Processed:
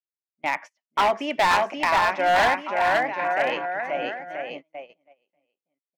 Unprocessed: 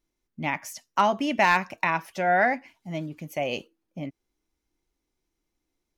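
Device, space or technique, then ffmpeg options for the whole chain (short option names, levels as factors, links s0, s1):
walkie-talkie: -af "highpass=480,lowpass=2600,aecho=1:1:530|980.5|1363|1689|1966:0.631|0.398|0.251|0.158|0.1,asoftclip=type=hard:threshold=0.0944,agate=range=0.0355:threshold=0.00891:ratio=16:detection=peak,volume=1.78"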